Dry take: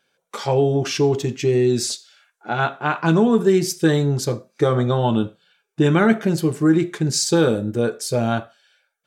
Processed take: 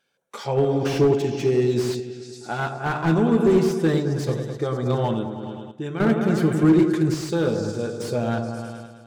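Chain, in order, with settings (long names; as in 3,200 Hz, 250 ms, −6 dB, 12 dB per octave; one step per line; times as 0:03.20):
echo whose low-pass opens from repeat to repeat 105 ms, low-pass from 750 Hz, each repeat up 1 octave, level −6 dB
sample-and-hold tremolo, depth 80%
slew-rate limiting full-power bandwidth 92 Hz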